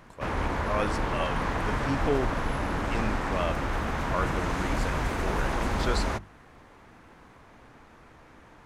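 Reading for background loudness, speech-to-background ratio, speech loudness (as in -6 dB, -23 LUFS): -30.0 LUFS, -5.0 dB, -35.0 LUFS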